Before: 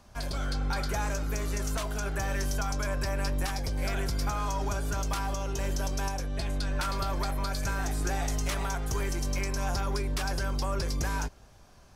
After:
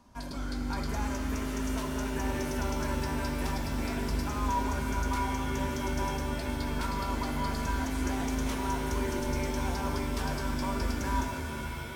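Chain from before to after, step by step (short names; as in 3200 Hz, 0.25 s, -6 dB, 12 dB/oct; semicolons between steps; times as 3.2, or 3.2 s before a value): small resonant body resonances 260/960 Hz, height 13 dB, ringing for 45 ms; shimmer reverb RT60 3.9 s, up +7 st, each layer -2 dB, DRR 4 dB; gain -7 dB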